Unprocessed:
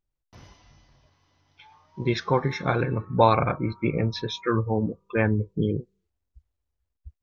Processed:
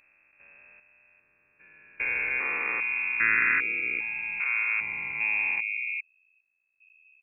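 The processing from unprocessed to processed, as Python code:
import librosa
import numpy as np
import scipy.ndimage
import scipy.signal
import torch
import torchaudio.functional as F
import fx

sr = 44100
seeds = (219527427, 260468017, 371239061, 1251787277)

y = fx.spec_steps(x, sr, hold_ms=400)
y = fx.freq_invert(y, sr, carrier_hz=2600)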